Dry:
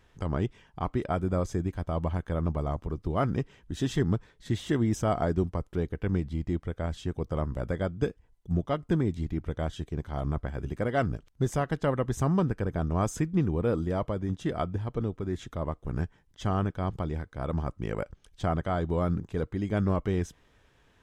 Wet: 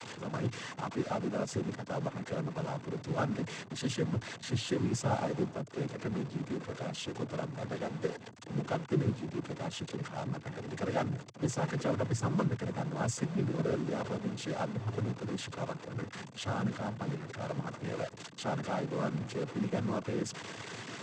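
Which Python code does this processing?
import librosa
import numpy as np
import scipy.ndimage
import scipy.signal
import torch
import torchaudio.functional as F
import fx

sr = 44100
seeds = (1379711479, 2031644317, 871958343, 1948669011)

y = x + 0.5 * 10.0 ** (-28.5 / 20.0) * np.sign(x)
y = fx.noise_vocoder(y, sr, seeds[0], bands=16)
y = fx.cheby_harmonics(y, sr, harmonics=(8,), levels_db=(-39,), full_scale_db=-11.5)
y = y * 10.0 ** (-7.0 / 20.0)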